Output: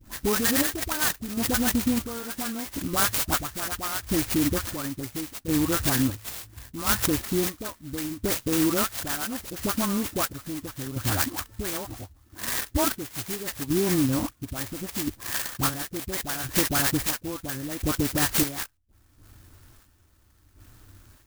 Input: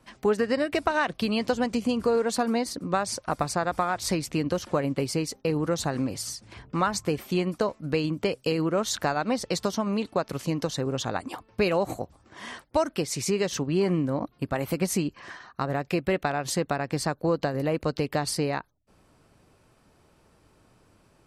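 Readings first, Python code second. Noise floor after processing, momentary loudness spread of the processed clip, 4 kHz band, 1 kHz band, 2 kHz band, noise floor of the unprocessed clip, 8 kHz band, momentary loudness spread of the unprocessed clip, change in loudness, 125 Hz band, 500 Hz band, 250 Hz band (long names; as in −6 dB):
−60 dBFS, 11 LU, +3.5 dB, −3.5 dB, +2.0 dB, −62 dBFS, +6.5 dB, 6 LU, +1.5 dB, −1.0 dB, −6.5 dB, +0.5 dB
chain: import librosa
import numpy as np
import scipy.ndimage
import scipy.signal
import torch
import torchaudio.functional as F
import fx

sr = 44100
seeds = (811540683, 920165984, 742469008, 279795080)

p1 = fx.chopper(x, sr, hz=0.73, depth_pct=65, duty_pct=45)
p2 = fx.curve_eq(p1, sr, hz=(100.0, 160.0, 310.0, 460.0, 970.0, 1800.0, 3900.0, 7900.0), db=(0, -17, -8, -21, -13, 2, -19, -3))
p3 = fx.over_compress(p2, sr, threshold_db=-35.0, ratio=-1.0)
p4 = p2 + (p3 * librosa.db_to_amplitude(1.5))
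p5 = fx.dispersion(p4, sr, late='highs', ms=75.0, hz=1200.0)
p6 = fx.clock_jitter(p5, sr, seeds[0], jitter_ms=0.13)
y = p6 * librosa.db_to_amplitude(7.5)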